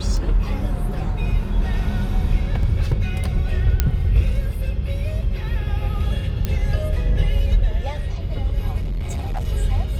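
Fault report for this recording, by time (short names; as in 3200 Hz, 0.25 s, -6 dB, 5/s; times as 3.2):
2.63 gap 2.4 ms
3.8 pop -3 dBFS
6.45 pop -9 dBFS
8.8–9.45 clipped -21 dBFS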